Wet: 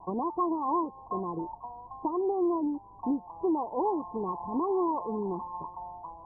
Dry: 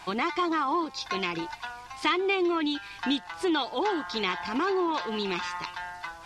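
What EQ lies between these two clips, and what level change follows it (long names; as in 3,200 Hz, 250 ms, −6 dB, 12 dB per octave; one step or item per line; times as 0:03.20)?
Chebyshev low-pass filter 1,100 Hz, order 10
0.0 dB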